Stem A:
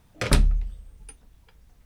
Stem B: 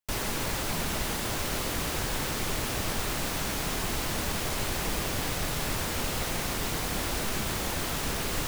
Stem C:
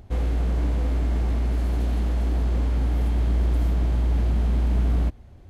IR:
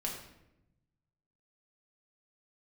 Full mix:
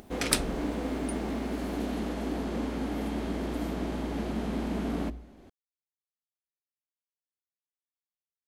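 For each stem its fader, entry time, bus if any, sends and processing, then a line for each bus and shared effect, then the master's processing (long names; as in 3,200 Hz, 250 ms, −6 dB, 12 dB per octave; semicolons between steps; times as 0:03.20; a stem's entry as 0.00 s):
−6.0 dB, 0.00 s, no send, spectral tilt +3 dB per octave
muted
−1.0 dB, 0.00 s, send −16.5 dB, low shelf with overshoot 160 Hz −13 dB, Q 1.5; hum removal 60.58 Hz, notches 2; upward compression, threshold −47 dBFS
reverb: on, RT60 0.90 s, pre-delay 5 ms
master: no processing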